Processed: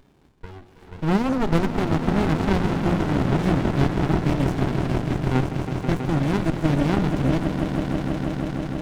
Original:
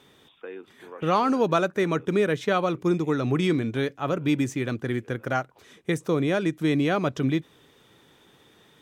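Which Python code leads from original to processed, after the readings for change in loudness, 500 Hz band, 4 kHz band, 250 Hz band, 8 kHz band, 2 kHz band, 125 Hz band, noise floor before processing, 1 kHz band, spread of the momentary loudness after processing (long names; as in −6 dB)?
+2.5 dB, −1.0 dB, +0.5 dB, +4.0 dB, +0.5 dB, 0.0 dB, +8.0 dB, −58 dBFS, +0.5 dB, 5 LU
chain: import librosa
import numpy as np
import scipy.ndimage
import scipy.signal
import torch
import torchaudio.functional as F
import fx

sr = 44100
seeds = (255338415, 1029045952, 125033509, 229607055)

y = fx.hum_notches(x, sr, base_hz=60, count=6)
y = fx.echo_swell(y, sr, ms=162, loudest=5, wet_db=-9.5)
y = fx.running_max(y, sr, window=65)
y = y * librosa.db_to_amplitude(3.0)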